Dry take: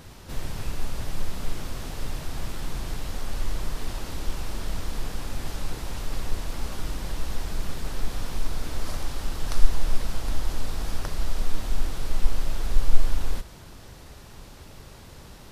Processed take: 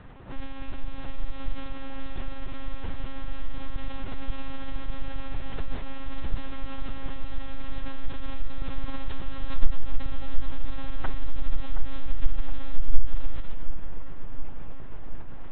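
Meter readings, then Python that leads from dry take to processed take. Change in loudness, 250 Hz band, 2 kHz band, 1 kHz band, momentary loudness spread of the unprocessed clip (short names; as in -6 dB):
-5.0 dB, -1.0 dB, -3.0 dB, -2.5 dB, 15 LU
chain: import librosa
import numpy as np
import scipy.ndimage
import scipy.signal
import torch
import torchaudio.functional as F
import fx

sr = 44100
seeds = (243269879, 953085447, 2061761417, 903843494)

y = fx.env_lowpass(x, sr, base_hz=1900.0, full_db=-14.0)
y = fx.lpc_monotone(y, sr, seeds[0], pitch_hz=270.0, order=10)
y = fx.echo_filtered(y, sr, ms=720, feedback_pct=66, hz=2000.0, wet_db=-10.0)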